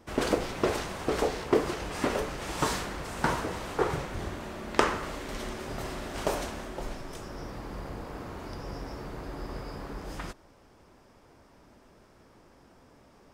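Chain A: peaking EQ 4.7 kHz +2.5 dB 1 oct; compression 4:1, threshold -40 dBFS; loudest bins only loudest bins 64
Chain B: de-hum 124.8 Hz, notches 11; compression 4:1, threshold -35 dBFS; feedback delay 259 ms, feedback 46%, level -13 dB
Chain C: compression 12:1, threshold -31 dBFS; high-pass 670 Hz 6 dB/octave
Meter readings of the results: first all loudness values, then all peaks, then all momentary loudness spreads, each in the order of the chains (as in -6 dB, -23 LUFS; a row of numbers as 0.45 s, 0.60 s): -44.0 LUFS, -39.5 LUFS, -41.5 LUFS; -22.0 dBFS, -11.0 dBFS, -10.0 dBFS; 16 LU, 20 LU, 7 LU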